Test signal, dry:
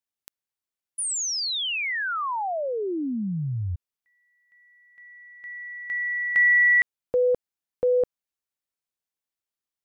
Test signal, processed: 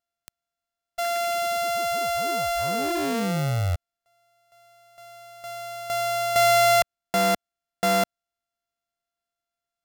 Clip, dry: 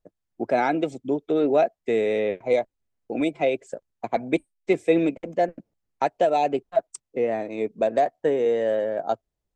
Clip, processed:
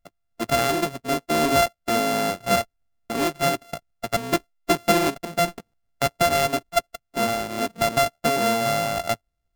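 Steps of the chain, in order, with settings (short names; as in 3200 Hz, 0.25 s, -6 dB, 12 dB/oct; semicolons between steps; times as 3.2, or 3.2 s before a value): sample sorter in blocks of 64 samples; low shelf 94 Hz +5.5 dB; in parallel at -11.5 dB: wrapped overs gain 21 dB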